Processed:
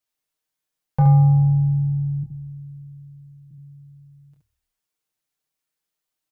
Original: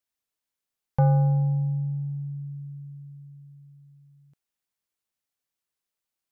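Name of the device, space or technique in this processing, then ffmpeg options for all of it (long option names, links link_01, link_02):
slapback doubling: -filter_complex "[0:a]asettb=1/sr,asplit=3[link_01][link_02][link_03];[link_01]atrim=end=2.234[link_04];[link_02]atrim=start=2.23:end=3.51,asetpts=PTS-STARTPTS,afade=type=in:duration=0.004:curve=qsin,afade=type=out:start_time=1.276:duration=0.004:curve=qsin,highpass=190[link_05];[link_03]atrim=start=3.506[link_06];[link_04][link_05]acrossfade=duration=0.004:curve1=hsin:curve2=qsin[link_07];[link_07][link_06]acrossfade=duration=0.004:curve1=qsin:curve2=hsin,aecho=1:1:6.5:0.75,asplit=3[link_08][link_09][link_10];[link_09]adelay=26,volume=-6.5dB[link_11];[link_10]adelay=71,volume=-5.5dB[link_12];[link_08][link_11][link_12]amix=inputs=3:normalize=0,asplit=4[link_13][link_14][link_15][link_16];[link_14]adelay=126,afreqshift=-38,volume=-24dB[link_17];[link_15]adelay=252,afreqshift=-76,volume=-30.4dB[link_18];[link_16]adelay=378,afreqshift=-114,volume=-36.8dB[link_19];[link_13][link_17][link_18][link_19]amix=inputs=4:normalize=0"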